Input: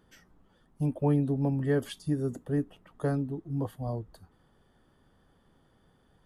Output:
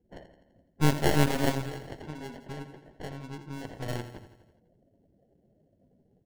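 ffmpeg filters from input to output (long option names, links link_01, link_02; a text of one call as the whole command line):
ffmpeg -i in.wav -filter_complex "[0:a]highpass=frequency=230:poles=1,equalizer=frequency=2500:width=0.48:gain=4,flanger=delay=18.5:depth=4.4:speed=1.4,aemphasis=mode=production:type=75fm,aecho=1:1:1.1:0.37,asettb=1/sr,asplit=3[link_01][link_02][link_03];[link_01]atrim=end=1.614[link_04];[link_02]atrim=start=1.61:end=3.76,asetpts=PTS-STARTPTS,afade=type=in:duration=0.004:curve=qsin,afade=type=out:start_time=2.146:duration=0.004:curve=qsin,acompressor=threshold=-43dB:ratio=12[link_05];[link_03]atrim=start=3.756[link_06];[link_04][link_05]acrossfade=duration=0.004:curve1=hsin:curve2=qsin[link_07];[link_07][link_06]acrossfade=duration=0.004:curve1=qsin:curve2=hsin,acrusher=samples=36:mix=1:aa=0.000001,afftdn=noise_reduction=24:noise_floor=-61,aecho=1:1:84|168|252|336|420|504|588:0.316|0.183|0.106|0.0617|0.0358|0.0208|0.012,aeval=exprs='0.0891*(cos(1*acos(clip(val(0)/0.0891,-1,1)))-cos(1*PI/2))+0.0447*(cos(4*acos(clip(val(0)/0.0891,-1,1)))-cos(4*PI/2))':channel_layout=same,volume=5.5dB" out.wav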